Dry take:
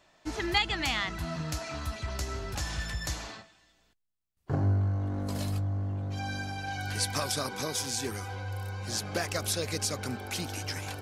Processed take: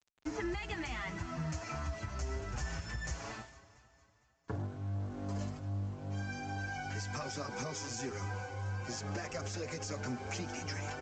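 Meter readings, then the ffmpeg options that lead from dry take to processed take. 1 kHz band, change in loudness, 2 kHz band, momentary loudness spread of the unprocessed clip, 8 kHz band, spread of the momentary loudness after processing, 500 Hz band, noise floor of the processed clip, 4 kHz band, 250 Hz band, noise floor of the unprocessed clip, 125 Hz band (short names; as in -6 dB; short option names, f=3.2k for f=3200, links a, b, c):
-6.0 dB, -7.5 dB, -6.5 dB, 8 LU, -10.0 dB, 2 LU, -5.5 dB, -70 dBFS, -13.5 dB, -4.5 dB, -68 dBFS, -7.0 dB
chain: -filter_complex "[0:a]equalizer=f=3.8k:w=2.1:g=-13,bandreject=f=102.2:t=h:w=4,bandreject=f=204.4:t=h:w=4,bandreject=f=306.6:t=h:w=4,bandreject=f=408.8:t=h:w=4,bandreject=f=511:t=h:w=4,bandreject=f=613.2:t=h:w=4,bandreject=f=715.4:t=h:w=4,acrossover=split=120[a][b];[b]alimiter=level_in=2.5dB:limit=-24dB:level=0:latency=1:release=23,volume=-2.5dB[c];[a][c]amix=inputs=2:normalize=0,acompressor=threshold=-39dB:ratio=6,aresample=16000,aeval=exprs='val(0)*gte(abs(val(0)),0.00178)':c=same,aresample=44100,aecho=1:1:228|456|684|912|1140|1368:0.141|0.0848|0.0509|0.0305|0.0183|0.011,asplit=2[d][e];[e]adelay=6.5,afreqshift=2.4[f];[d][f]amix=inputs=2:normalize=1,volume=6dB"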